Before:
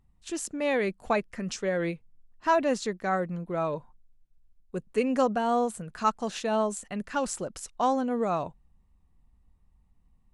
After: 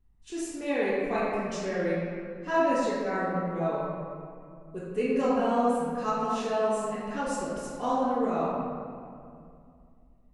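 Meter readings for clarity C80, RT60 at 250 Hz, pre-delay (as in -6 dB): -0.5 dB, 2.8 s, 4 ms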